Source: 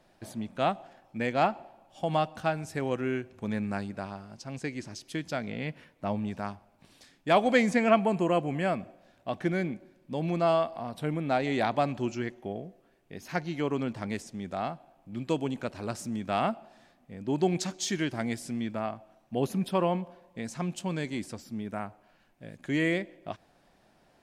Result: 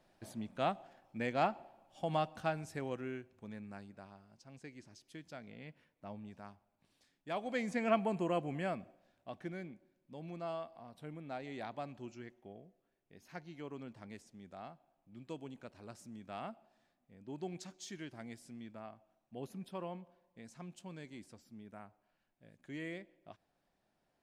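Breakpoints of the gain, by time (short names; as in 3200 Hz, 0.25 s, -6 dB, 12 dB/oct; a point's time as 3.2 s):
2.58 s -7 dB
3.57 s -16.5 dB
7.4 s -16.5 dB
7.93 s -8.5 dB
8.58 s -8.5 dB
9.74 s -16.5 dB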